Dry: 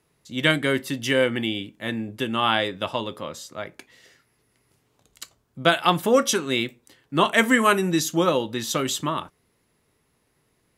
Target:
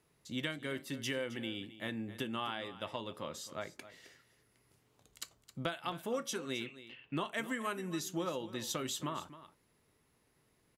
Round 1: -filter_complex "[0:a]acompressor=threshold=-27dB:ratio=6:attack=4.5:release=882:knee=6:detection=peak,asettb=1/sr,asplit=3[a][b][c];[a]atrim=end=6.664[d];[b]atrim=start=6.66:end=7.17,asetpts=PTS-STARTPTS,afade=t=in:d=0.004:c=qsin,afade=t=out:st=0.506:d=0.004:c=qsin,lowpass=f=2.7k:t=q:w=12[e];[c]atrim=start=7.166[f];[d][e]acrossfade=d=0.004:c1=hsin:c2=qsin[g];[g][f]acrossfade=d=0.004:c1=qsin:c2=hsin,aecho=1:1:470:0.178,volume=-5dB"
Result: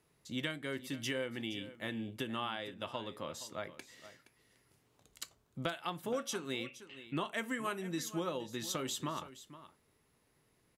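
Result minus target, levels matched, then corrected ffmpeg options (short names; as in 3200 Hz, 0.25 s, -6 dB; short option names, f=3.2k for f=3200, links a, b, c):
echo 0.204 s late
-filter_complex "[0:a]acompressor=threshold=-27dB:ratio=6:attack=4.5:release=882:knee=6:detection=peak,asettb=1/sr,asplit=3[a][b][c];[a]atrim=end=6.664[d];[b]atrim=start=6.66:end=7.17,asetpts=PTS-STARTPTS,afade=t=in:d=0.004:c=qsin,afade=t=out:st=0.506:d=0.004:c=qsin,lowpass=f=2.7k:t=q:w=12[e];[c]atrim=start=7.166[f];[d][e]acrossfade=d=0.004:c1=hsin:c2=qsin[g];[g][f]acrossfade=d=0.004:c1=qsin:c2=hsin,aecho=1:1:266:0.178,volume=-5dB"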